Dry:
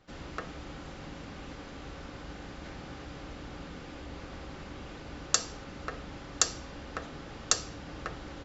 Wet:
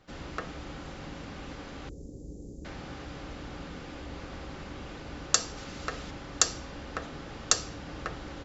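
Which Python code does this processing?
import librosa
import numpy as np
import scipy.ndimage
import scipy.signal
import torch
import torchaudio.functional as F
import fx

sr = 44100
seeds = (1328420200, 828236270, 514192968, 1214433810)

y = fx.cheby1_bandstop(x, sr, low_hz=440.0, high_hz=7100.0, order=3, at=(1.89, 2.65))
y = fx.high_shelf(y, sr, hz=4000.0, db=10.5, at=(5.57, 6.11))
y = y * 10.0 ** (2.0 / 20.0)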